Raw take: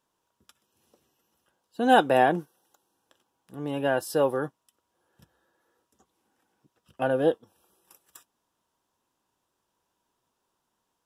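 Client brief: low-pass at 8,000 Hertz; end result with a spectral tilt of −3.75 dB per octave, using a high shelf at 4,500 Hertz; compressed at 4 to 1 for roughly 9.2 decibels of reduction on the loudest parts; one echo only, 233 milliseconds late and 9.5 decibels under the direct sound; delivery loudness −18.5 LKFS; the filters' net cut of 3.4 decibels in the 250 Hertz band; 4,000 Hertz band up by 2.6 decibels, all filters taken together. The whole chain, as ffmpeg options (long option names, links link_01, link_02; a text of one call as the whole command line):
ffmpeg -i in.wav -af "lowpass=8000,equalizer=frequency=250:width_type=o:gain=-4,equalizer=frequency=4000:width_type=o:gain=7.5,highshelf=frequency=4500:gain=-7.5,acompressor=threshold=-25dB:ratio=4,aecho=1:1:233:0.335,volume=13dB" out.wav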